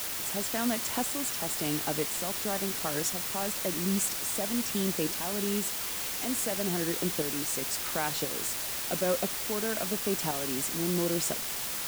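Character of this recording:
tremolo saw up 0.97 Hz, depth 60%
a quantiser's noise floor 6 bits, dither triangular

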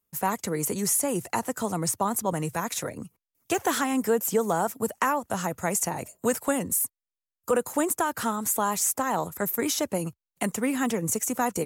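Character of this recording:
background noise floor −91 dBFS
spectral slope −3.5 dB per octave

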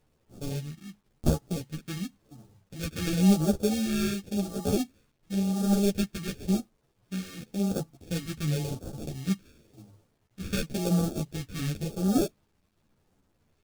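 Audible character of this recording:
aliases and images of a low sample rate 1,000 Hz, jitter 0%
phaser sweep stages 2, 0.93 Hz, lowest notch 730–2,000 Hz
a quantiser's noise floor 12 bits, dither none
a shimmering, thickened sound

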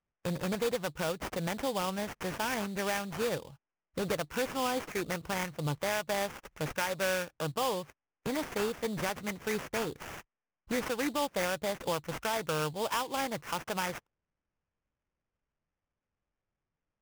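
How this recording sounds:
aliases and images of a low sample rate 4,100 Hz, jitter 20%

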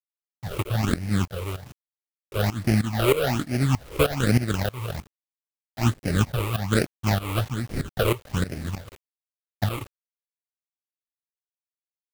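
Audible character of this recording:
aliases and images of a low sample rate 1,000 Hz, jitter 20%
phaser sweep stages 8, 1.2 Hz, lowest notch 210–1,100 Hz
a quantiser's noise floor 8 bits, dither none
tremolo saw up 3.2 Hz, depth 85%

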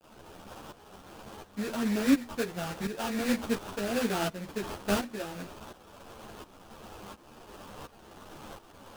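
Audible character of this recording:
a quantiser's noise floor 8 bits, dither triangular
tremolo saw up 1.4 Hz, depth 80%
aliases and images of a low sample rate 2,100 Hz, jitter 20%
a shimmering, thickened sound

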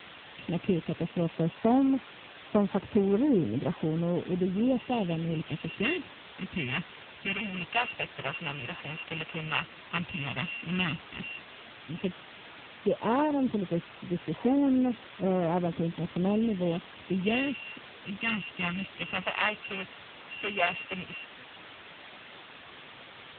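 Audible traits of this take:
a buzz of ramps at a fixed pitch in blocks of 16 samples
phaser sweep stages 2, 0.086 Hz, lowest notch 270–3,100 Hz
a quantiser's noise floor 6 bits, dither triangular
AMR narrowband

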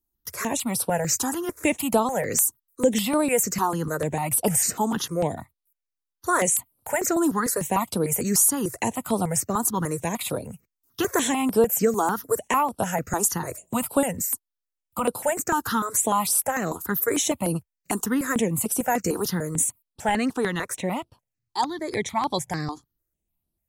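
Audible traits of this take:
notches that jump at a steady rate 6.7 Hz 570–6,800 Hz

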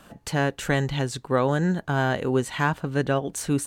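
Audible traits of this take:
background noise floor −55 dBFS
spectral slope −5.5 dB per octave

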